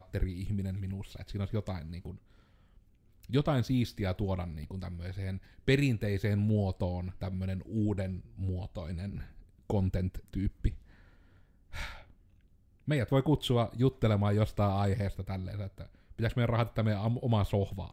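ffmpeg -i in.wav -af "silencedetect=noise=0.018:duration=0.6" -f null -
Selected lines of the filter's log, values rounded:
silence_start: 2.11
silence_end: 3.30 | silence_duration: 1.19
silence_start: 10.72
silence_end: 11.74 | silence_duration: 1.02
silence_start: 11.91
silence_end: 12.88 | silence_duration: 0.97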